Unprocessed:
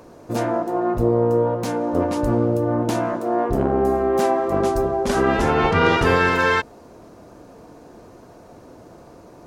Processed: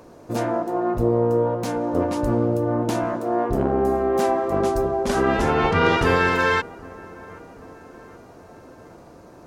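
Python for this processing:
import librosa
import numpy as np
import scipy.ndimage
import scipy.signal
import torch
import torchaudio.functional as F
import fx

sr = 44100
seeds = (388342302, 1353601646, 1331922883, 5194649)

y = fx.echo_wet_lowpass(x, sr, ms=778, feedback_pct=52, hz=1800.0, wet_db=-22)
y = F.gain(torch.from_numpy(y), -1.5).numpy()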